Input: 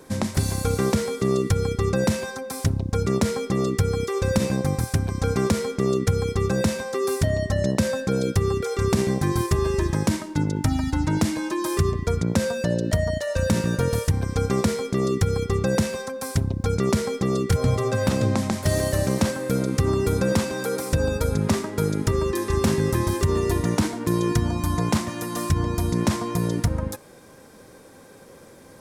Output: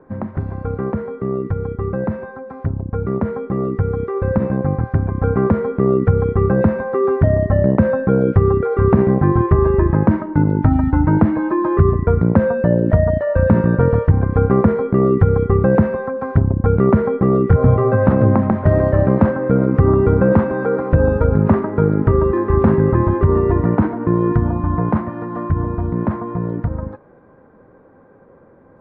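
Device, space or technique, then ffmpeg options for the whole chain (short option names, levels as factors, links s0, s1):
action camera in a waterproof case: -af "lowpass=f=1500:w=0.5412,lowpass=f=1500:w=1.3066,dynaudnorm=f=740:g=13:m=3.76" -ar 24000 -c:a aac -b:a 64k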